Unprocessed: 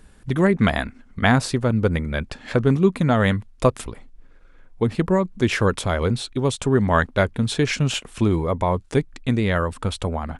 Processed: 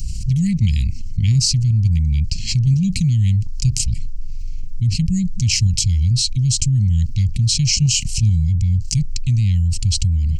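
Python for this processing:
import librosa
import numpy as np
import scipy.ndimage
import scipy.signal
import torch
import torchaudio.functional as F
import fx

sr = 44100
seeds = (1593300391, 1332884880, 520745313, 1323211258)

p1 = scipy.signal.sosfilt(scipy.signal.cheby2(4, 80, [490.0, 1100.0], 'bandstop', fs=sr, output='sos'), x)
p2 = fx.level_steps(p1, sr, step_db=22)
p3 = p1 + F.gain(torch.from_numpy(p2), -1.0).numpy()
p4 = fx.fixed_phaser(p3, sr, hz=2400.0, stages=8)
p5 = fx.env_flatten(p4, sr, amount_pct=70)
y = F.gain(torch.from_numpy(p5), 4.0).numpy()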